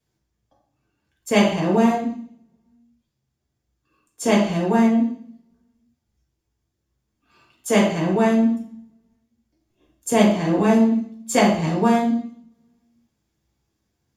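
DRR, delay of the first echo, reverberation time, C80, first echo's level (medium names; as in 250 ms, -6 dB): -5.0 dB, no echo, 0.60 s, 8.5 dB, no echo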